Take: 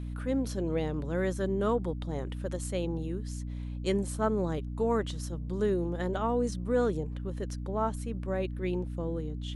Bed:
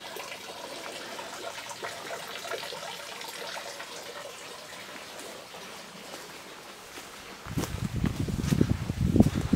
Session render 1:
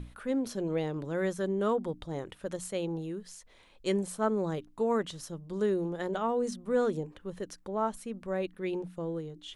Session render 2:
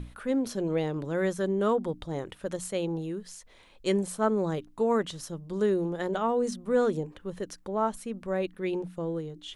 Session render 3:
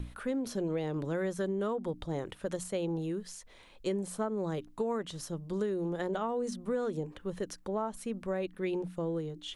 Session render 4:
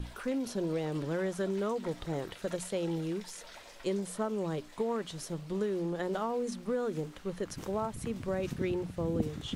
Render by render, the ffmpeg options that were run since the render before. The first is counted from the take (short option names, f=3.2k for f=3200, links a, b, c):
-af "bandreject=f=60:t=h:w=6,bandreject=f=120:t=h:w=6,bandreject=f=180:t=h:w=6,bandreject=f=240:t=h:w=6,bandreject=f=300:t=h:w=6"
-af "volume=3dB"
-filter_complex "[0:a]acrossover=split=730|1100[a][b][c];[c]alimiter=level_in=6dB:limit=-24dB:level=0:latency=1:release=194,volume=-6dB[d];[a][b][d]amix=inputs=3:normalize=0,acompressor=threshold=-29dB:ratio=10"
-filter_complex "[1:a]volume=-13.5dB[a];[0:a][a]amix=inputs=2:normalize=0"